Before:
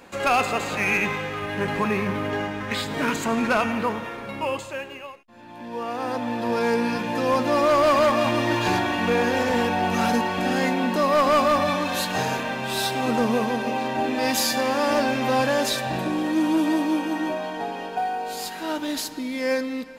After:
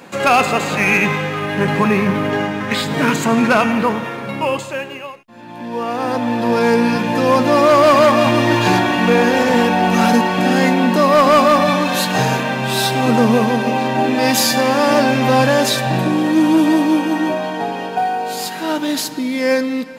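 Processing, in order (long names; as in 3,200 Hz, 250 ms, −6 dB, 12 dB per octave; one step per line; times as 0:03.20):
low shelf with overshoot 100 Hz −9.5 dB, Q 3
level +7.5 dB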